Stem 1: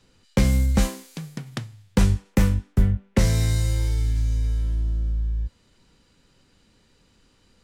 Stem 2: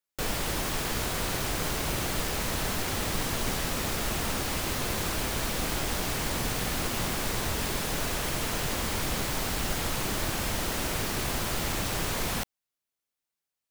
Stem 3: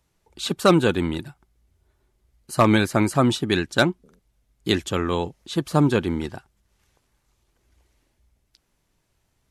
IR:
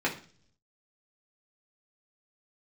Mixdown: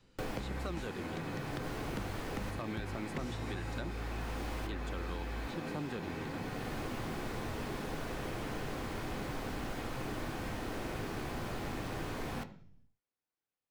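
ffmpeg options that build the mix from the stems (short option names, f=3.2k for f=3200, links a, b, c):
-filter_complex "[0:a]acompressor=threshold=-26dB:ratio=6,volume=-5dB[a];[1:a]tiltshelf=f=970:g=3,volume=-6dB,asplit=2[b][c];[c]volume=-11dB[d];[2:a]alimiter=limit=-9.5dB:level=0:latency=1,volume=-14dB,asplit=2[e][f];[f]apad=whole_len=604419[g];[b][g]sidechaincompress=threshold=-56dB:ratio=8:attack=16:release=366[h];[3:a]atrim=start_sample=2205[i];[d][i]afir=irnorm=-1:irlink=0[j];[a][h][e][j]amix=inputs=4:normalize=0,highshelf=f=5.5k:g=-10,acrossover=split=590|2400[k][l][m];[k]acompressor=threshold=-38dB:ratio=4[n];[l]acompressor=threshold=-45dB:ratio=4[o];[m]acompressor=threshold=-51dB:ratio=4[p];[n][o][p]amix=inputs=3:normalize=0"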